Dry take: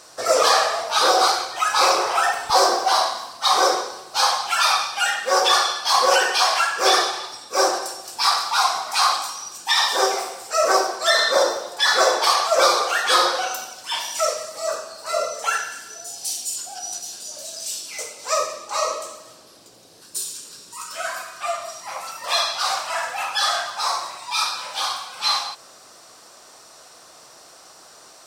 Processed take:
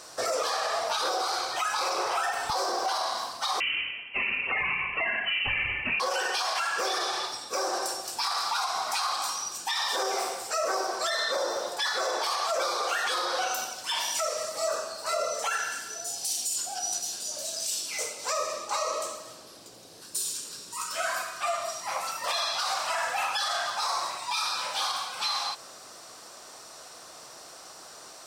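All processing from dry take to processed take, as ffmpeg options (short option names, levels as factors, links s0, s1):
-filter_complex "[0:a]asettb=1/sr,asplit=3[s0][s1][s2];[s0]atrim=end=3.604[s3];[s1]atrim=start=3.6:end=6,asetpts=PTS-STARTPTS,afade=t=in:d=0.004:c=qsin,afade=t=out:st=2.396:d=0.004:c=qsin,highpass=440,lowpass=f=3000:t=q:w=0.5098,lowpass=f=3000:t=q:w=0.6013,lowpass=f=3000:t=q:w=0.9,lowpass=f=3000:t=q:w=2.563,afreqshift=-3500[s4];[s2]atrim=start=5.996[s5];[s3][s4]acrossfade=d=0.004:c1=hsin:c2=qsin[s6];[s6][s5]acrossfade=d=0.004:c1=qsin:c2=hsin,acompressor=threshold=0.0708:ratio=6,alimiter=limit=0.106:level=0:latency=1:release=34"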